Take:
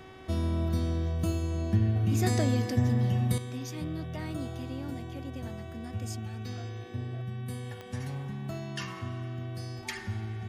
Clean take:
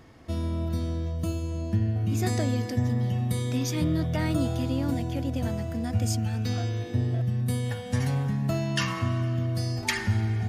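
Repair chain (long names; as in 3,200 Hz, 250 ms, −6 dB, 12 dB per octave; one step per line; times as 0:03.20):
click removal
hum removal 378.9 Hz, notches 10
level 0 dB, from 0:03.38 +10 dB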